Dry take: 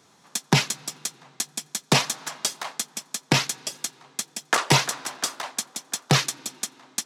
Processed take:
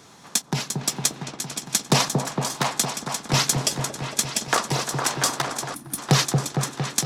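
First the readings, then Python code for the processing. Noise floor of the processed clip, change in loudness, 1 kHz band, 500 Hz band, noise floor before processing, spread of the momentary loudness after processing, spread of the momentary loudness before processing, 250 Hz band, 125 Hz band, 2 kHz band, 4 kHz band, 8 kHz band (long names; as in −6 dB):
−47 dBFS, +2.0 dB, +2.0 dB, +2.5 dB, −59 dBFS, 8 LU, 12 LU, +2.0 dB, +3.0 dB, −1.0 dB, +1.0 dB, +3.5 dB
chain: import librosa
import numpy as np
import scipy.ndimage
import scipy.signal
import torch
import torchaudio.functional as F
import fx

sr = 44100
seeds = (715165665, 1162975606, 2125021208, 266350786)

p1 = fx.dynamic_eq(x, sr, hz=2400.0, q=0.95, threshold_db=-35.0, ratio=4.0, max_db=-6)
p2 = fx.over_compress(p1, sr, threshold_db=-27.0, ratio=-0.5)
p3 = p1 + F.gain(torch.from_numpy(p2), 1.0).numpy()
p4 = fx.chopper(p3, sr, hz=1.2, depth_pct=60, duty_pct=50)
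p5 = fx.low_shelf(p4, sr, hz=84.0, db=7.0)
p6 = p5 + fx.echo_opening(p5, sr, ms=229, hz=750, octaves=1, feedback_pct=70, wet_db=-3, dry=0)
y = fx.spec_box(p6, sr, start_s=5.74, length_s=0.24, low_hz=350.0, high_hz=8800.0, gain_db=-16)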